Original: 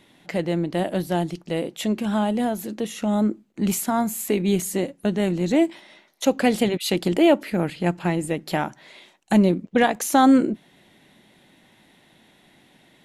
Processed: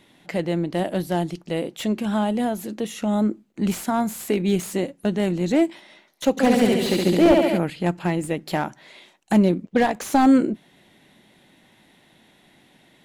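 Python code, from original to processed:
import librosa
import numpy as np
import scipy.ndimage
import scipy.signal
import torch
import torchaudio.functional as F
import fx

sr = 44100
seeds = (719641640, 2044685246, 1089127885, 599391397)

y = fx.room_flutter(x, sr, wall_m=11.9, rt60_s=1.2, at=(6.37, 7.57), fade=0.02)
y = fx.slew_limit(y, sr, full_power_hz=180.0)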